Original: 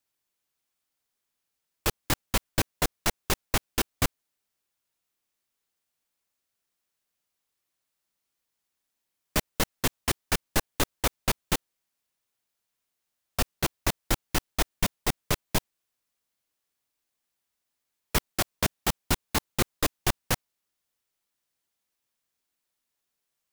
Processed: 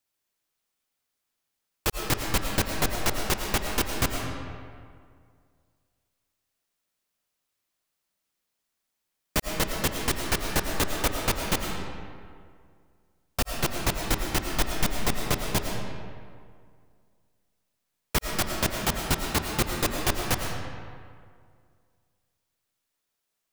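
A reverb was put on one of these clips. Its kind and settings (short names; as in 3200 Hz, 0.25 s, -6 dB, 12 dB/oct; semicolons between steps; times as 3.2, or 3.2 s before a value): digital reverb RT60 2.1 s, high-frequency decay 0.6×, pre-delay 65 ms, DRR 2 dB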